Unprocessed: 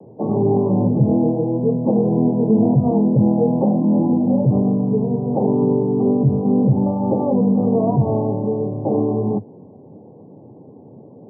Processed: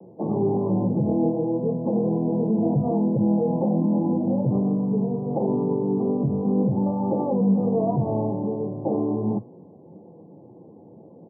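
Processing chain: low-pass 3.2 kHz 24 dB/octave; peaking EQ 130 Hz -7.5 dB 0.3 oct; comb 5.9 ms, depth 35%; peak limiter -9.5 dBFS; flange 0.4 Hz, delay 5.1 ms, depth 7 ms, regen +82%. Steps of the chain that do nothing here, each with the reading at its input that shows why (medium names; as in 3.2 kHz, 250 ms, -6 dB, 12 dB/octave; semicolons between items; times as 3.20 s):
low-pass 3.2 kHz: input has nothing above 910 Hz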